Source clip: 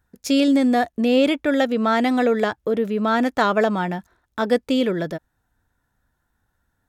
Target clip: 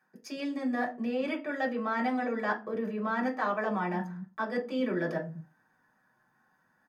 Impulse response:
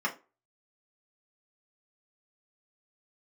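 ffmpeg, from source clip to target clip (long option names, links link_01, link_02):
-filter_complex "[0:a]areverse,acompressor=threshold=-33dB:ratio=6,areverse,acrossover=split=160[link_01][link_02];[link_01]adelay=220[link_03];[link_03][link_02]amix=inputs=2:normalize=0[link_04];[1:a]atrim=start_sample=2205,asetrate=40131,aresample=44100[link_05];[link_04][link_05]afir=irnorm=-1:irlink=0,volume=-3.5dB"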